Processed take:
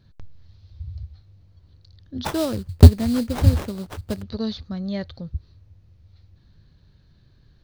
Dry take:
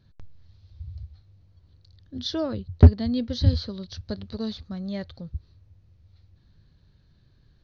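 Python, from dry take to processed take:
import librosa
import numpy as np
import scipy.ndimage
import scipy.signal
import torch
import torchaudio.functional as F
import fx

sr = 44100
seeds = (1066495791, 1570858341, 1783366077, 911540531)

y = fx.sample_hold(x, sr, seeds[0], rate_hz=4500.0, jitter_pct=20, at=(2.24, 4.21), fade=0.02)
y = y * librosa.db_to_amplitude(4.0)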